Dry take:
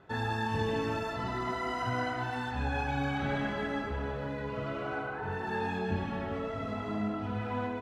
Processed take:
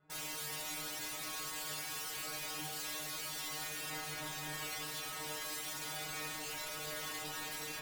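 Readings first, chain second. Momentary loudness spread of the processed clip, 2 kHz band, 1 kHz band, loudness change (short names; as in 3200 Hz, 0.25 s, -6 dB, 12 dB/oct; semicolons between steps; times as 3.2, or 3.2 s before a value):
1 LU, -6.5 dB, -12.0 dB, -6.0 dB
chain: wrapped overs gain 34.5 dB; added harmonics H 3 -12 dB, 5 -25 dB, 7 -30 dB, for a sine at -34.5 dBFS; metallic resonator 150 Hz, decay 0.46 s, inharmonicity 0.002; gain +11 dB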